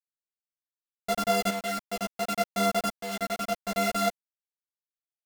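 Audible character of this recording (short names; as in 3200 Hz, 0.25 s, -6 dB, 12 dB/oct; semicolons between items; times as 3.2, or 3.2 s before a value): a buzz of ramps at a fixed pitch in blocks of 64 samples; tremolo saw up 0.67 Hz, depth 65%; a quantiser's noise floor 6-bit, dither none; a shimmering, thickened sound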